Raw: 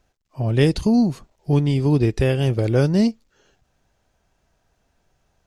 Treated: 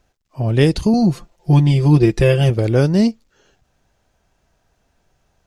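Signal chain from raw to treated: 0.93–2.5 comb 5.8 ms, depth 83%; gain +3 dB

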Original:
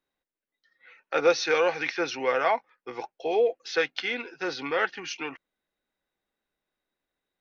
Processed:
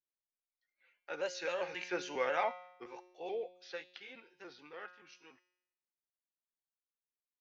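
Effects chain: trilling pitch shifter +1.5 st, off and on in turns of 0.139 s; Doppler pass-by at 2.26, 13 m/s, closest 6.6 m; resonator 180 Hz, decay 0.83 s, harmonics all, mix 70%; gain +1 dB

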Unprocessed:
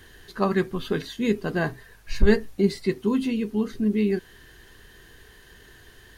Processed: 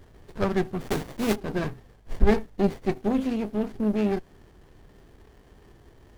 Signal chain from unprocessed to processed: 0.8–1.36 block floating point 3-bit; running maximum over 33 samples

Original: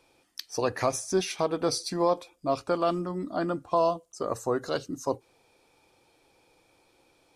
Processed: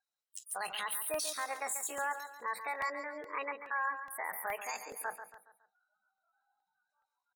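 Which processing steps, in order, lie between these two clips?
spectral gate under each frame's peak -30 dB strong; spectral noise reduction 27 dB; HPF 1300 Hz 6 dB/oct; spectral gate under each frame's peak -25 dB strong; high shelf 3400 Hz +2.5 dB; limiter -26.5 dBFS, peak gain reduction 10 dB; pitch shift +8.5 st; feedback echo 0.139 s, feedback 41%, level -10 dB; crackling interface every 0.42 s, samples 64, repeat, from 0.72

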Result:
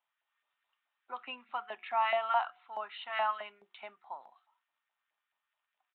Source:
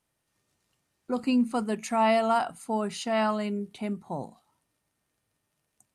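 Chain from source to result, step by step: downsampling 8000 Hz; LFO high-pass saw up 4.7 Hz 730–1600 Hz; tilt +2 dB/oct; notch 470 Hz, Q 12; de-hum 364.4 Hz, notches 2; gain -8 dB

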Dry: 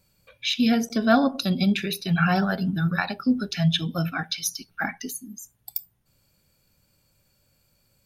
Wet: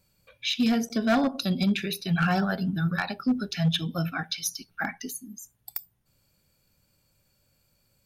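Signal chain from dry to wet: overloaded stage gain 15 dB; gain -2.5 dB

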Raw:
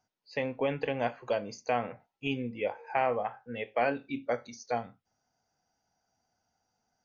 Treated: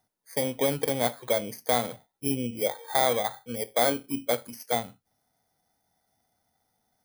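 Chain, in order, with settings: FFT order left unsorted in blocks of 16 samples; gain +4.5 dB

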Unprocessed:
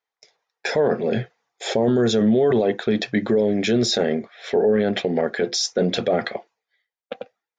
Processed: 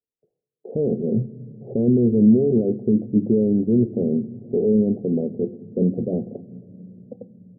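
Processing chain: Gaussian blur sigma 24 samples; reverb RT60 3.6 s, pre-delay 3 ms, DRR 19.5 dB; gain +1.5 dB

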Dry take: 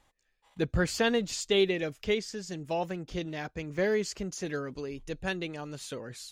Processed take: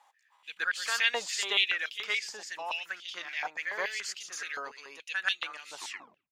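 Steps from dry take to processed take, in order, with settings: tape stop at the end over 0.52 s; reverse echo 0.122 s -7 dB; stepped high-pass 7 Hz 860–3200 Hz

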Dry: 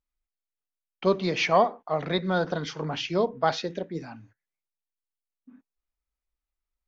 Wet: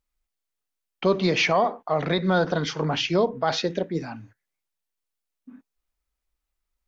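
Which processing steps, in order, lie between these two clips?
limiter -18 dBFS, peak gain reduction 8.5 dB; gain +6 dB

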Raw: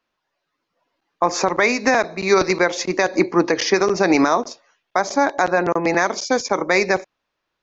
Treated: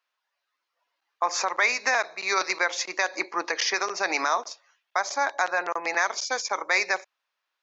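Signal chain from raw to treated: HPF 910 Hz 12 dB/oct; gain -3 dB

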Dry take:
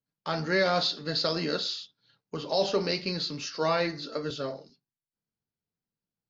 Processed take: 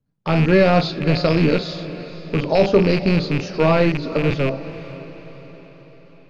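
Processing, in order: rattling part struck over -40 dBFS, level -19 dBFS; tilt -4 dB/oct; diffused feedback echo 0.489 s, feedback 52%, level -15 dB; gain +7.5 dB

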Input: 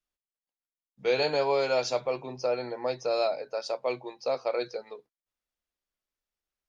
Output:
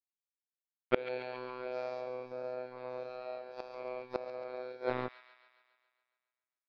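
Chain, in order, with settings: spectral dilation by 0.24 s; low shelf 140 Hz -7 dB; robotiser 126 Hz; crossover distortion -42.5 dBFS; air absorption 430 m; flipped gate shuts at -22 dBFS, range -28 dB; thin delay 0.138 s, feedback 61%, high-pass 1900 Hz, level -9.5 dB; gain +14.5 dB

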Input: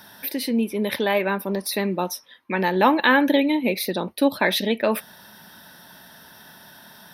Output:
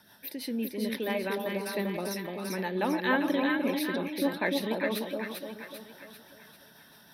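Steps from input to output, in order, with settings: rotary speaker horn 6 Hz; split-band echo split 1000 Hz, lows 0.297 s, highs 0.394 s, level -3 dB; 1.81–2.53 backwards sustainer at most 22 dB/s; gain -8.5 dB

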